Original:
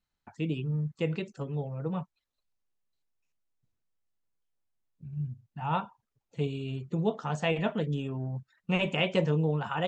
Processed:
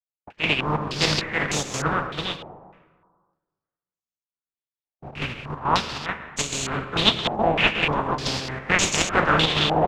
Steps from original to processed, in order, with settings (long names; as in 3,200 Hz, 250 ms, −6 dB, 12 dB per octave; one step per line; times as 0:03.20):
compressing power law on the bin magnitudes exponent 0.27
noise gate −54 dBFS, range −37 dB
in parallel at −7 dB: sample-and-hold swept by an LFO 40×, swing 60% 1.6 Hz
on the sum: single-tap delay 327 ms −4.5 dB
square-wave tremolo 2.3 Hz, depth 60%, duty 75%
on a send at −10 dB: convolution reverb RT60 1.5 s, pre-delay 92 ms
on the sum: low-pass on a step sequencer 3.3 Hz 760–6,600 Hz
level +4 dB